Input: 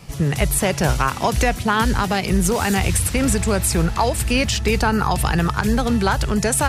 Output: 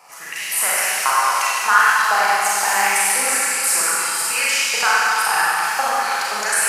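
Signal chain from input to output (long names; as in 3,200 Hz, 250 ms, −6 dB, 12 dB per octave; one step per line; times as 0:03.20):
parametric band 3,500 Hz −11.5 dB 0.57 octaves
auto-filter high-pass saw up 1.9 Hz 800–4,800 Hz
four-comb reverb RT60 2.9 s, combs from 31 ms, DRR −8 dB
level −2.5 dB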